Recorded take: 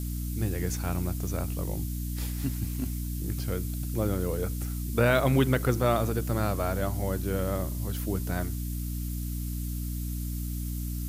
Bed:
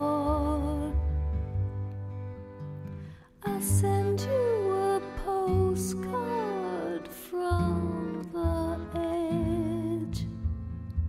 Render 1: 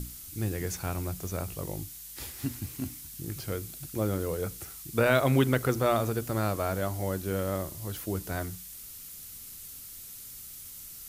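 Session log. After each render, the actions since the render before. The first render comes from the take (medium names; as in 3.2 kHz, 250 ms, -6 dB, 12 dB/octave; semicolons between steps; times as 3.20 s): hum notches 60/120/180/240/300 Hz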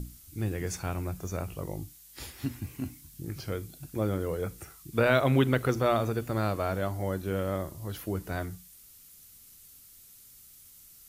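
noise print and reduce 9 dB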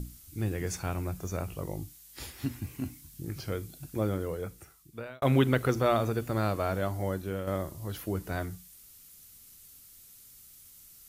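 3.99–5.22 s: fade out; 7.06–7.47 s: fade out, to -6 dB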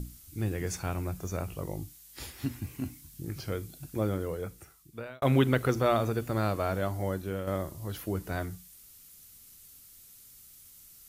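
no audible change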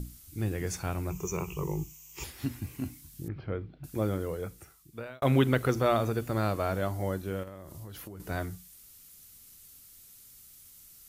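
1.10–2.24 s: rippled EQ curve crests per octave 0.74, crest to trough 16 dB; 3.28–3.84 s: Gaussian low-pass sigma 3.3 samples; 7.43–8.20 s: compression 12:1, threshold -39 dBFS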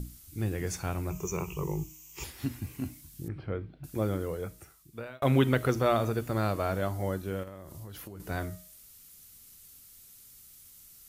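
de-hum 312.7 Hz, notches 29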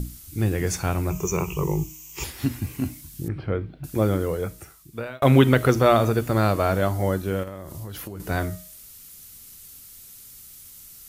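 trim +8.5 dB; peak limiter -3 dBFS, peak gain reduction 1 dB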